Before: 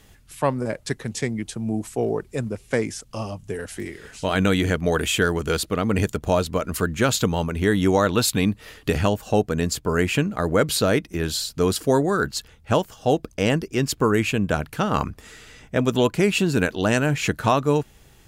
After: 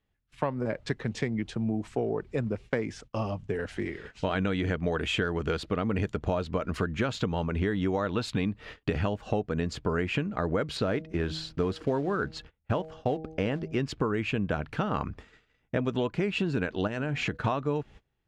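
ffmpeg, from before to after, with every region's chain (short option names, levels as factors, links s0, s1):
-filter_complex "[0:a]asettb=1/sr,asplit=3[s0][s1][s2];[s0]atrim=end=10.774[s3];[s1]atrim=start=10.77:end=13.77,asetpts=PTS-STARTPTS,afade=t=in:d=0.004:c=qsin,afade=t=out:st=2.996:d=0.004:c=qsin,highshelf=f=4100:g=-7,acrusher=bits=6:mode=log:mix=0:aa=0.000001,bandreject=f=158.7:t=h:w=4,bandreject=f=317.4:t=h:w=4,bandreject=f=476.1:t=h:w=4,bandreject=f=634.8:t=h:w=4,bandreject=f=793.5:t=h:w=4[s4];[s2]atrim=start=13.766[s5];[s3][s4]acrossfade=d=0.004:c1=hsin:c2=qsin[s6];[s6][s5]acrossfade=d=0.004:c1=qsin:c2=hsin,asettb=1/sr,asplit=3[s7][s8][s9];[s7]atrim=end=16.874[s10];[s8]atrim=start=16.87:end=17.45,asetpts=PTS-STARTPTS,afade=t=in:d=0.004:c=qsin,afade=t=out:st=0.576:d=0.004:c=qsin,bandreject=f=243.1:t=h:w=4,bandreject=f=486.2:t=h:w=4,bandreject=f=729.3:t=h:w=4,agate=range=0.0224:threshold=0.0316:ratio=3:release=100:detection=peak,acompressor=threshold=0.0631:ratio=4:attack=3.2:release=140:knee=1:detection=peak[s11];[s9]atrim=start=17.446[s12];[s10][s11]acrossfade=d=0.004:c1=hsin:c2=qsin[s13];[s13][s12]acrossfade=d=0.004:c1=qsin:c2=hsin,agate=range=0.0501:threshold=0.00891:ratio=16:detection=peak,lowpass=3200,acompressor=threshold=0.0562:ratio=6"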